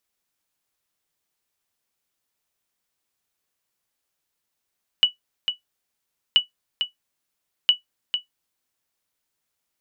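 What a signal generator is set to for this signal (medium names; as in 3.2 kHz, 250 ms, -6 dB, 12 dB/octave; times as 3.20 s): sonar ping 2.95 kHz, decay 0.13 s, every 1.33 s, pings 3, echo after 0.45 s, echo -8 dB -6.5 dBFS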